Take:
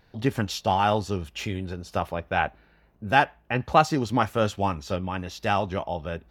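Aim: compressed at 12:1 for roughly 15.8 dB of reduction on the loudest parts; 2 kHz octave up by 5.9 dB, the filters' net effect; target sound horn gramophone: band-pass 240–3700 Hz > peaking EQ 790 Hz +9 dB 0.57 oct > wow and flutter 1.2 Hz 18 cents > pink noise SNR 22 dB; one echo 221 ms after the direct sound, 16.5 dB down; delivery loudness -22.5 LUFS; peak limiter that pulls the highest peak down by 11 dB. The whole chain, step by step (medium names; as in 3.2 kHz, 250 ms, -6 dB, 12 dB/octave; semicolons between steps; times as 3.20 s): peaking EQ 2 kHz +8 dB; compression 12:1, threshold -26 dBFS; peak limiter -25 dBFS; band-pass 240–3700 Hz; peaking EQ 790 Hz +9 dB 0.57 oct; delay 221 ms -16.5 dB; wow and flutter 1.2 Hz 18 cents; pink noise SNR 22 dB; trim +13 dB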